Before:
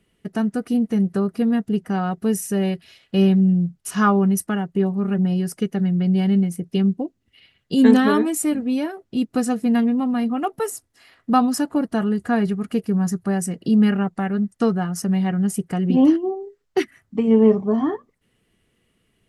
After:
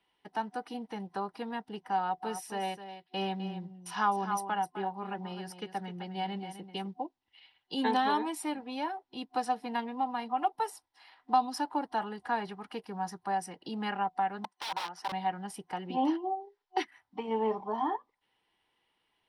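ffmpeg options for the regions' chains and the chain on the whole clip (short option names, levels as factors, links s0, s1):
-filter_complex "[0:a]asettb=1/sr,asplit=3[s0][s1][s2];[s0]atrim=end=1.974[s3];[s1]atrim=start=1.97:end=6.88,asetpts=PTS-STARTPTS,afade=t=in:d=0.004:c=qsin,afade=t=out:st=4.906:d=0.004:c=qsin,agate=range=0.0224:threshold=0.00794:ratio=3:release=100:detection=peak,aecho=1:1:257:0.282,atrim=end_sample=216531[s4];[s2]atrim=start=6.876[s5];[s3][s4]acrossfade=d=0.004:c1=hsin:c2=qsin[s6];[s6][s5]acrossfade=d=0.004:c1=qsin:c2=hsin,asettb=1/sr,asplit=3[s7][s8][s9];[s7]atrim=end=14.444[s10];[s8]atrim=start=14.44:end=15.12,asetpts=PTS-STARTPTS,afade=t=in:d=0.004:c=qsin,afade=t=out:st=0.676:d=0.004:c=qsin,acrossover=split=250 4600:gain=0.158 1 0.2[s11][s12][s13];[s11][s12][s13]amix=inputs=3:normalize=0,aeval=exprs='(mod(20*val(0)+1,2)-1)/20':c=same[s14];[s9]atrim=start=15.116[s15];[s10][s14]acrossfade=d=0.004:c1=hsin:c2=qsin[s16];[s16][s15]acrossfade=d=0.004:c1=qsin:c2=hsin,superequalizer=6b=1.78:9b=3.98:13b=1.41:15b=0.316,acrossover=split=490|3000[s17][s18][s19];[s18]acompressor=threshold=0.112:ratio=6[s20];[s17][s20][s19]amix=inputs=3:normalize=0,acrossover=split=540 7700:gain=0.141 1 0.158[s21][s22][s23];[s21][s22][s23]amix=inputs=3:normalize=0,volume=0.473"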